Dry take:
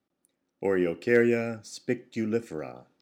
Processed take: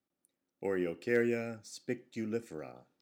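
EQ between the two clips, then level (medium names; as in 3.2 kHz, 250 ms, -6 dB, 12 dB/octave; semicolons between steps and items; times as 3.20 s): treble shelf 7 kHz +5.5 dB; -8.0 dB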